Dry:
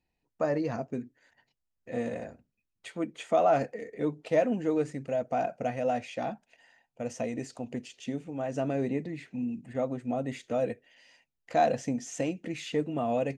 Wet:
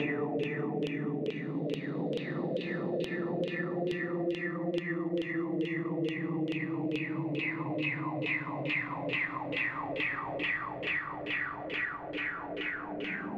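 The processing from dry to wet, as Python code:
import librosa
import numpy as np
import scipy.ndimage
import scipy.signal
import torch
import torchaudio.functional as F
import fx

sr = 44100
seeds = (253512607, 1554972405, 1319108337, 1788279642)

p1 = fx.diode_clip(x, sr, knee_db=-23.0)
p2 = fx.highpass(p1, sr, hz=180.0, slope=6)
p3 = fx.high_shelf(p2, sr, hz=2300.0, db=8.0)
p4 = fx.hum_notches(p3, sr, base_hz=60, count=5)
p5 = fx.paulstretch(p4, sr, seeds[0], factor=42.0, window_s=0.1, from_s=8.99)
p6 = fx.sample_hold(p5, sr, seeds[1], rate_hz=3100.0, jitter_pct=0)
p7 = p5 + F.gain(torch.from_numpy(p6), -8.5).numpy()
p8 = fx.filter_lfo_lowpass(p7, sr, shape='saw_down', hz=2.3, low_hz=440.0, high_hz=3100.0, q=7.8)
p9 = p8 + fx.echo_single(p8, sr, ms=393, db=-12.5, dry=0)
y = fx.band_squash(p9, sr, depth_pct=100)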